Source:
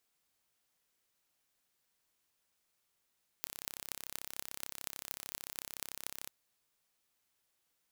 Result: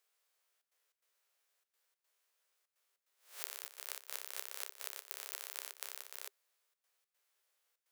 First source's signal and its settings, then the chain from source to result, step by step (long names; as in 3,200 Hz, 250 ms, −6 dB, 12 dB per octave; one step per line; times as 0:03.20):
impulse train 33.5 per second, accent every 8, −10 dBFS 2.86 s
peak hold with a rise ahead of every peak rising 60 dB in 0.40 s
gate pattern "xxxxxx.xx." 147 BPM −12 dB
Chebyshev high-pass with heavy ripple 390 Hz, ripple 3 dB